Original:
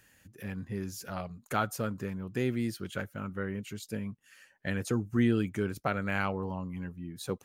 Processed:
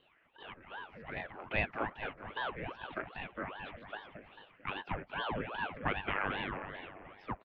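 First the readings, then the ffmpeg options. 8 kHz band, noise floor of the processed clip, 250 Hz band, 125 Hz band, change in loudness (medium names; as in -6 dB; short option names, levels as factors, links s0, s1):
under -35 dB, -68 dBFS, -14.0 dB, -12.0 dB, -5.5 dB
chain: -af "aecho=1:1:222|444|666|888|1110|1332:0.473|0.227|0.109|0.0523|0.0251|0.0121,highpass=f=390:t=q:w=0.5412,highpass=f=390:t=q:w=1.307,lowpass=f=2600:t=q:w=0.5176,lowpass=f=2600:t=q:w=0.7071,lowpass=f=2600:t=q:w=1.932,afreqshift=-53,aeval=exprs='val(0)*sin(2*PI*720*n/s+720*0.85/2.5*sin(2*PI*2.5*n/s))':c=same,volume=1.12"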